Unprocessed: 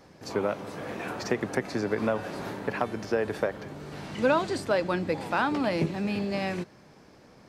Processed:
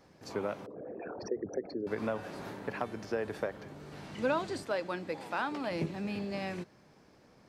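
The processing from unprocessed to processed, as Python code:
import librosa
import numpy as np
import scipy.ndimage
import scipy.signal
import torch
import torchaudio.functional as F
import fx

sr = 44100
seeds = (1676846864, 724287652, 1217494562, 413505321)

y = fx.envelope_sharpen(x, sr, power=3.0, at=(0.66, 1.87))
y = fx.highpass(y, sr, hz=290.0, slope=6, at=(4.63, 5.71))
y = y * librosa.db_to_amplitude(-7.0)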